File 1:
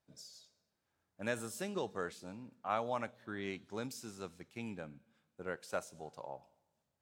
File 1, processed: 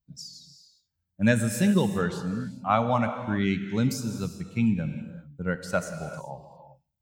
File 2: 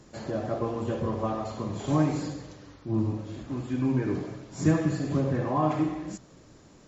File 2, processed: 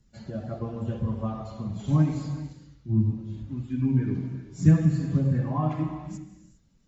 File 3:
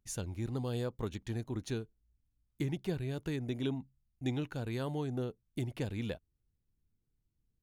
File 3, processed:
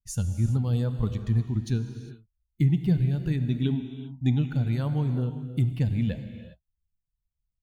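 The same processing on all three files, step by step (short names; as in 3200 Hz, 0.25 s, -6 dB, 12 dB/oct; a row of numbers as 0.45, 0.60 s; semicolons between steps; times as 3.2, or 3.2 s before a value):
per-bin expansion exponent 1.5; resonant low shelf 260 Hz +9.5 dB, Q 1.5; non-linear reverb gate 0.43 s flat, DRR 8 dB; match loudness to -27 LUFS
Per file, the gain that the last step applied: +14.0, -3.0, +5.5 dB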